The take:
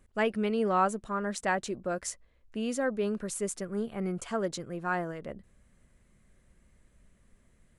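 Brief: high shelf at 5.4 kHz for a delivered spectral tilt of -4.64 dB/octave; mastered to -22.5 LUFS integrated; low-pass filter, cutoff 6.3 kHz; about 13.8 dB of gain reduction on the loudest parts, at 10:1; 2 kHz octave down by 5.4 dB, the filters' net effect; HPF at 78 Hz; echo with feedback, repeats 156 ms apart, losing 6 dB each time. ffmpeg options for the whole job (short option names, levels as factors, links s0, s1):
-af "highpass=78,lowpass=6300,equalizer=f=2000:t=o:g=-8,highshelf=f=5400:g=6,acompressor=threshold=0.0126:ratio=10,aecho=1:1:156|312|468|624|780|936:0.501|0.251|0.125|0.0626|0.0313|0.0157,volume=8.91"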